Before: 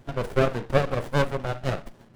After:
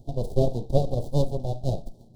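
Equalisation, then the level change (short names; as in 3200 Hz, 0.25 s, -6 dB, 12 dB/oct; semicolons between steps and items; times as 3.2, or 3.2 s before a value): elliptic band-stop 750–3900 Hz, stop band 60 dB; low shelf 130 Hz +8 dB; -1.5 dB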